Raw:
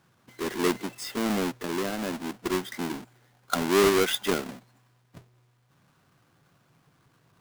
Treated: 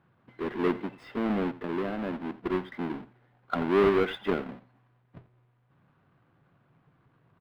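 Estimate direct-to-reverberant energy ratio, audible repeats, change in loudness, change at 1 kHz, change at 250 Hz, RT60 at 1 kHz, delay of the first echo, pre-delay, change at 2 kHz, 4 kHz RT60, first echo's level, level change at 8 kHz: no reverb, 1, -2.0 dB, -2.5 dB, -0.5 dB, no reverb, 86 ms, no reverb, -4.5 dB, no reverb, -17.5 dB, under -25 dB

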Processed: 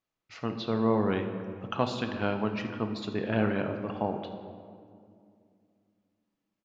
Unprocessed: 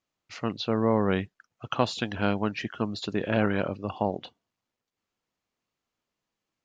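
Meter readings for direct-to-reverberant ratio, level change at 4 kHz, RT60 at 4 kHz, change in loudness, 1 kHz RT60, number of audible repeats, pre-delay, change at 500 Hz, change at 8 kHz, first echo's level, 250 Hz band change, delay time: 5.0 dB, -5.0 dB, 1.3 s, -2.5 dB, 2.1 s, 1, 5 ms, -2.0 dB, no reading, -17.0 dB, -1.5 dB, 77 ms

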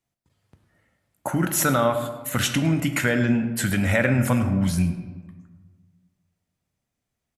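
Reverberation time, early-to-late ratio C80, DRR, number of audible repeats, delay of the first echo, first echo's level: 1.4 s, 10.5 dB, 7.0 dB, 1, 106 ms, -17.0 dB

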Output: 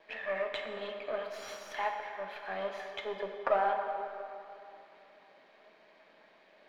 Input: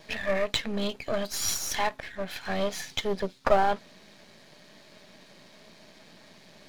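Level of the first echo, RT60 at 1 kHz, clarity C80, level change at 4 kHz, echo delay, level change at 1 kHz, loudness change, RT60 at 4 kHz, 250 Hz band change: no echo, 2.9 s, 5.5 dB, -13.5 dB, no echo, -4.0 dB, -7.0 dB, 1.9 s, -16.5 dB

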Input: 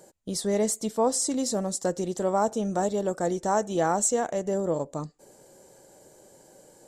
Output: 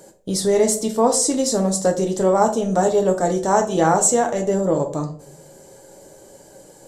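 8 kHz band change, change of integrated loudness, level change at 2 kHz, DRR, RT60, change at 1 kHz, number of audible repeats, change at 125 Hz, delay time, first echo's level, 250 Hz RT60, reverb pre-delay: +8.0 dB, +8.0 dB, +8.0 dB, 3.0 dB, 0.50 s, +8.0 dB, no echo, +9.0 dB, no echo, no echo, 0.70 s, 7 ms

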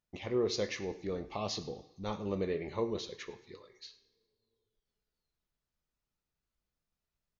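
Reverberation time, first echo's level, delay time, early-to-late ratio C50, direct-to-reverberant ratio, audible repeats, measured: 1.3 s, -20.5 dB, 104 ms, 13.0 dB, 6.0 dB, 1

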